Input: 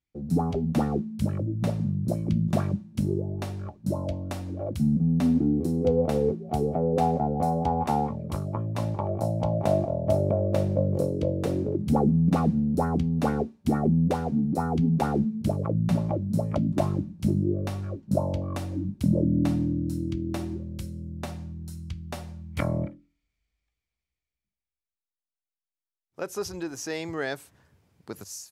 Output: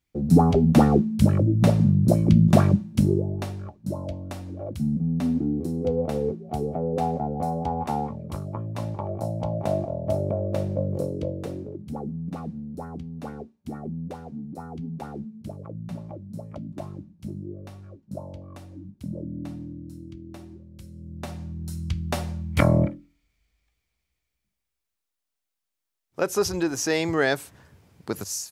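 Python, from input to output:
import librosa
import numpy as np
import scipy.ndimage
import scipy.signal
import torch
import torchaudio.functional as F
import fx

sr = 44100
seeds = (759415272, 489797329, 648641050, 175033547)

y = fx.gain(x, sr, db=fx.line((2.85, 8.5), (3.76, -2.0), (11.19, -2.0), (11.88, -11.0), (20.71, -11.0), (21.12, -2.0), (21.98, 8.5)))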